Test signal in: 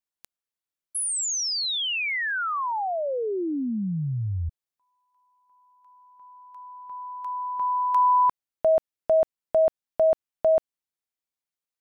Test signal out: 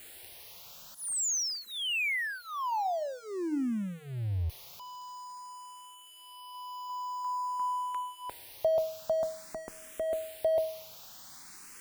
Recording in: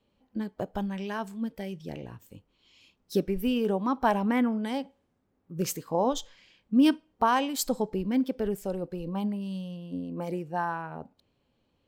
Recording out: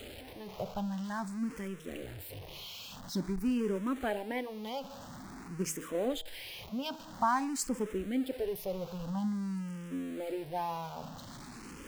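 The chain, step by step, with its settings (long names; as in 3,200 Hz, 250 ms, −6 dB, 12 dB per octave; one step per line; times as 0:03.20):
converter with a step at zero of −33.5 dBFS
hum removal 159.3 Hz, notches 6
frequency shifter mixed with the dry sound +0.49 Hz
level −4.5 dB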